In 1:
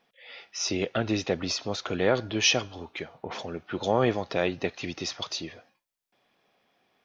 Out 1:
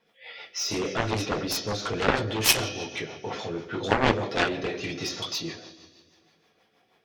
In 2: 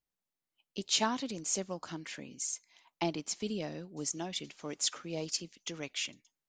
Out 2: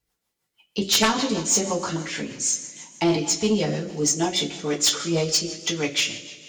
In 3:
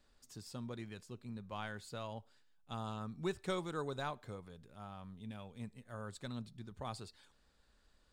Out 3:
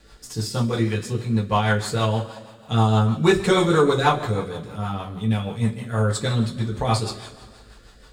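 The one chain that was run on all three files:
two-slope reverb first 0.23 s, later 1.9 s, from -18 dB, DRR -3.5 dB; rotary speaker horn 6.3 Hz; added harmonics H 7 -10 dB, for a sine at -6 dBFS; normalise peaks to -6 dBFS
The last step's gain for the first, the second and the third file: -0.5, +10.5, +18.5 dB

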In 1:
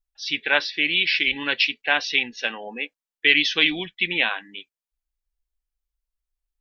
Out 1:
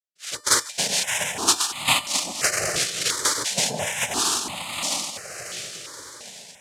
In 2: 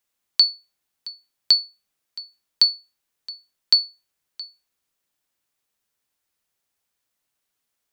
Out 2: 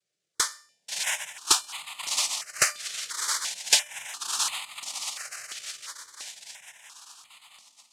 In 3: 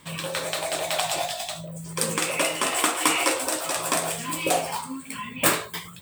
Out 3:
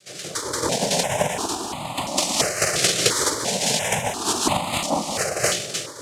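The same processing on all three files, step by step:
notch 2300 Hz, Q 8; diffused feedback echo 0.659 s, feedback 60%, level -11 dB; compressor 6:1, threshold -26 dBFS; LPF 4100 Hz 24 dB/oct; bell 1500 Hz +9 dB 0.47 oct; spectral noise reduction 6 dB; steep high-pass 170 Hz; noise vocoder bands 2; resonator 600 Hz, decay 0.48 s, mix 60%; AGC gain up to 7 dB; step phaser 2.9 Hz 250–1600 Hz; normalise peaks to -3 dBFS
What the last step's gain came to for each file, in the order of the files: +9.5, +15.0, +13.5 dB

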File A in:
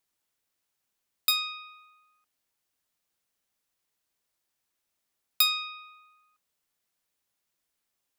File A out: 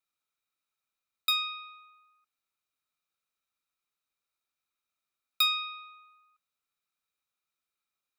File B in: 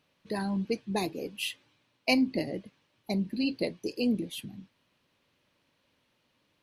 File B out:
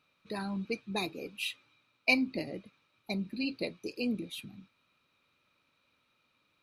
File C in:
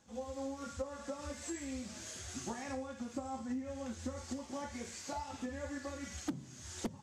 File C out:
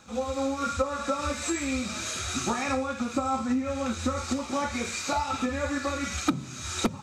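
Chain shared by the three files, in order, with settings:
small resonant body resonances 1300/2400/3800 Hz, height 14 dB, ringing for 20 ms; normalise peaks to -12 dBFS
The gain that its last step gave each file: -10.0, -5.5, +12.0 dB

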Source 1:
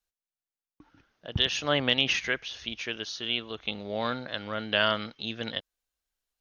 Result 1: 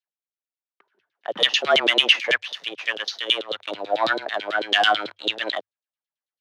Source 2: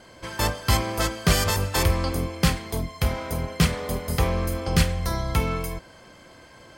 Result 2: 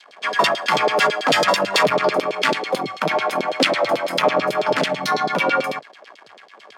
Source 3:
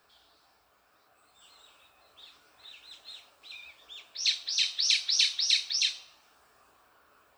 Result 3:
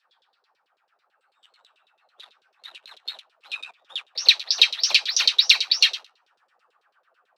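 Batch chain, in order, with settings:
sample leveller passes 3; LFO band-pass saw down 9.1 Hz 320–4200 Hz; frequency shift +100 Hz; normalise peaks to -2 dBFS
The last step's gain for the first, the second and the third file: +6.0, +8.5, +9.5 dB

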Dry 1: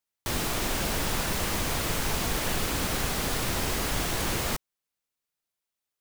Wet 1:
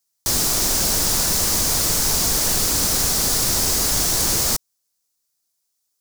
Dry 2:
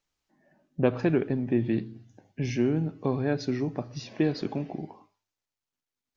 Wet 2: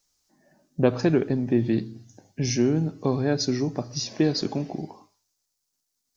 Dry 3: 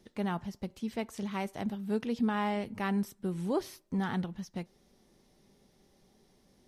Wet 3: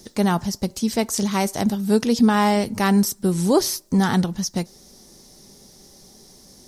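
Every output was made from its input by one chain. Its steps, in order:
resonant high shelf 3900 Hz +10 dB, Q 1.5; normalise peaks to -6 dBFS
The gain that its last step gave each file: +3.5, +3.5, +13.5 dB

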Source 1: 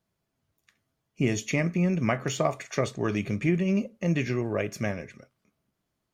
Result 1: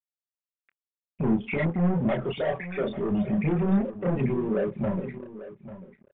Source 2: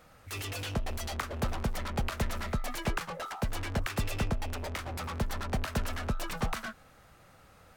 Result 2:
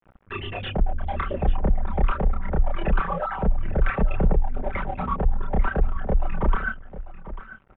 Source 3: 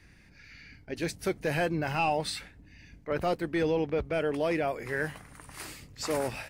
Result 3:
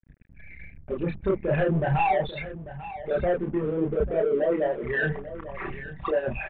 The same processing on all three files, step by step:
formant sharpening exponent 3; comb 5.2 ms, depth 73%; dynamic EQ 360 Hz, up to -6 dB, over -38 dBFS, Q 2.9; soft clip -28.5 dBFS; chorus voices 4, 0.91 Hz, delay 30 ms, depth 2.3 ms; crossover distortion -56 dBFS; air absorption 330 m; echo 0.843 s -14.5 dB; downsampling 8000 Hz; match loudness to -27 LUFS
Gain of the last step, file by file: +10.5, +16.0, +14.0 dB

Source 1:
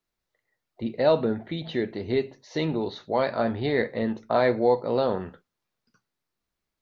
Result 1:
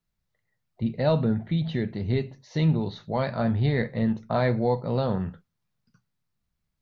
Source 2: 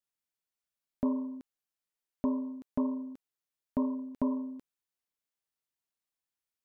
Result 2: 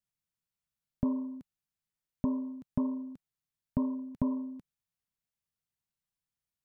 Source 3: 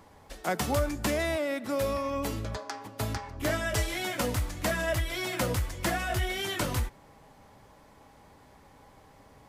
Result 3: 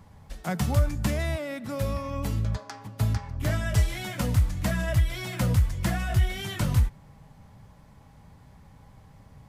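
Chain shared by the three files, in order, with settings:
resonant low shelf 230 Hz +10.5 dB, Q 1.5; gain -2.5 dB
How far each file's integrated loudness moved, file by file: -0.5, -0.5, +3.0 LU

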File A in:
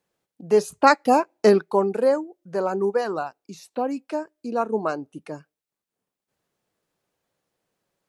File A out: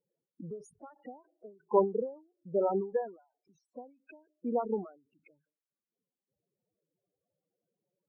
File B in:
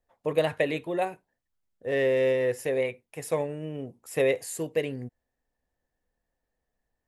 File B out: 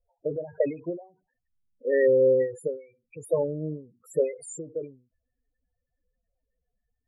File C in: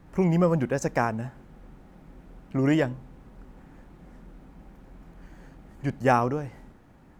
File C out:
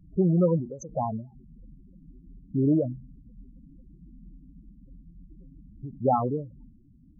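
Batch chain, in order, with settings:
loudest bins only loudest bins 8; ending taper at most 150 dB/s; normalise peaks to -12 dBFS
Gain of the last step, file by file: -3.0, +4.5, +0.5 dB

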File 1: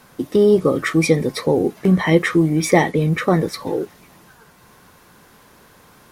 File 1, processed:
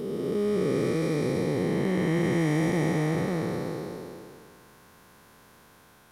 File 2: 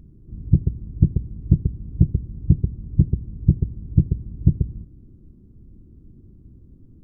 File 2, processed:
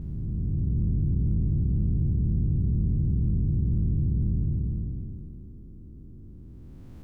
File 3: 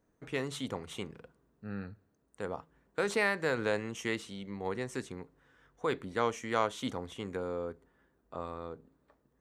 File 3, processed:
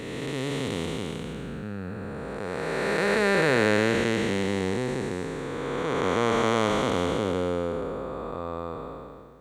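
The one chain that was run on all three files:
time blur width 0.841 s; match loudness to -27 LUFS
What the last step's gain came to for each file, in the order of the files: -4.0, +3.5, +15.0 dB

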